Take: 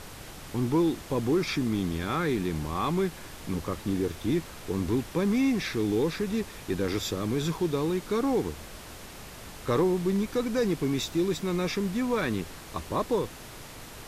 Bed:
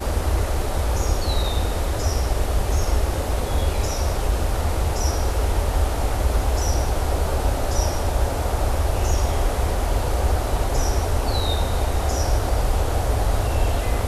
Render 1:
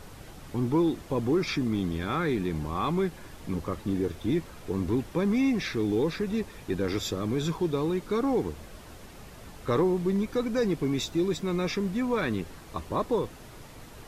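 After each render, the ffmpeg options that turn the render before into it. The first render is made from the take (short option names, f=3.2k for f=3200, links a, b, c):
-af "afftdn=nr=7:nf=-44"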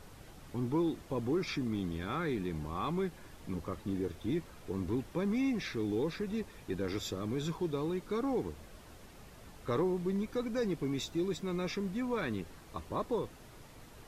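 -af "volume=-7dB"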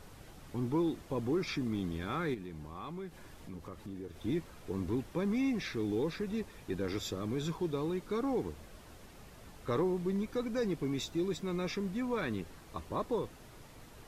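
-filter_complex "[0:a]asettb=1/sr,asplit=3[a][b][c];[a]atrim=end=2.344[d];[b]atrim=start=2.34:end=4.16,asetpts=PTS-STARTPTS,afade=t=in:d=0.004:c=qsin,afade=t=out:st=1.816:d=0.004:c=qsin,acompressor=threshold=-46dB:ratio=2:attack=3.2:release=140:knee=1:detection=peak[e];[c]atrim=start=4.156[f];[d][e]acrossfade=d=0.004:c1=hsin:c2=qsin[g];[g][f]acrossfade=d=0.004:c1=qsin:c2=hsin"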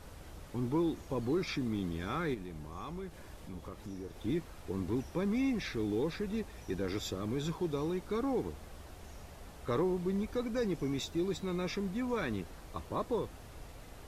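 -filter_complex "[1:a]volume=-31.5dB[a];[0:a][a]amix=inputs=2:normalize=0"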